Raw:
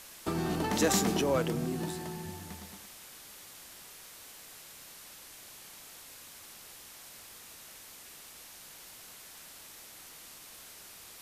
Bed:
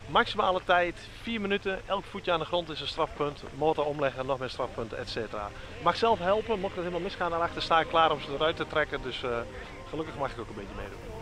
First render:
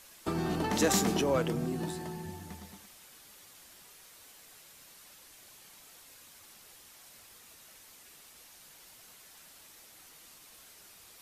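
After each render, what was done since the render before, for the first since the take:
broadband denoise 6 dB, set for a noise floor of −51 dBFS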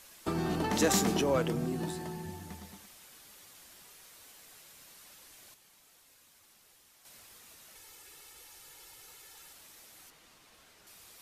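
0:05.54–0:07.05: clip gain −7.5 dB
0:07.75–0:09.53: comb filter 2.3 ms
0:10.10–0:10.87: low-pass filter 3,100 Hz 6 dB per octave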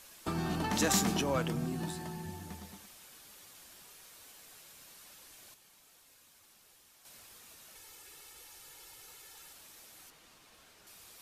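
notch filter 2,000 Hz, Q 26
dynamic equaliser 430 Hz, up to −7 dB, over −48 dBFS, Q 1.4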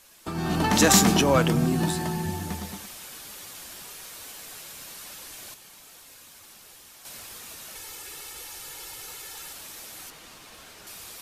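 automatic gain control gain up to 13 dB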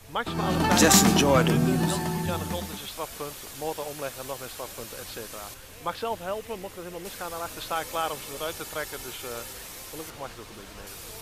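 mix in bed −6 dB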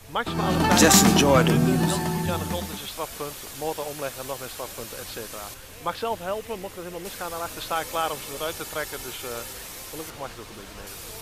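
level +2.5 dB
brickwall limiter −2 dBFS, peak gain reduction 1.5 dB

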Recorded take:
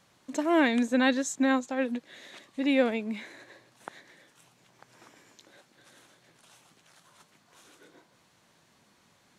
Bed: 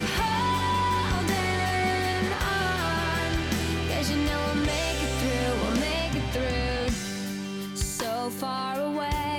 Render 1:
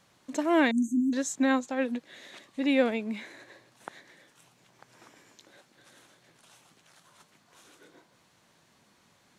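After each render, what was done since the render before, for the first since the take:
0:00.71–0:01.13: linear-phase brick-wall band-stop 380–5,900 Hz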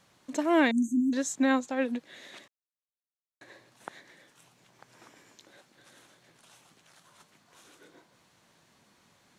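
0:02.48–0:03.41: silence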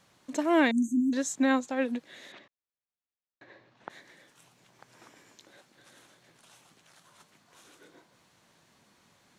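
0:02.32–0:03.90: high-frequency loss of the air 200 metres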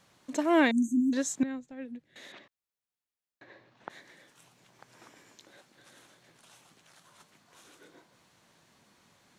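0:01.43–0:02.16: drawn EQ curve 130 Hz 0 dB, 180 Hz −7 dB, 1,100 Hz −22 dB, 1,900 Hz −15 dB, 4,300 Hz −20 dB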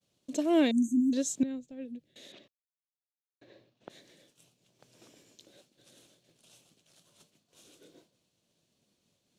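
downward expander −56 dBFS
flat-topped bell 1,300 Hz −12 dB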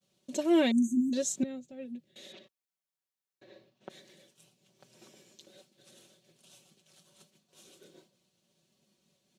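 high-pass filter 50 Hz
comb filter 5.3 ms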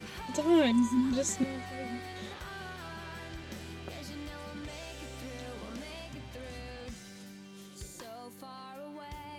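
mix in bed −16.5 dB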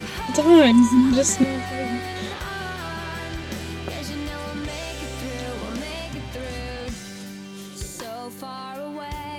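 level +12 dB

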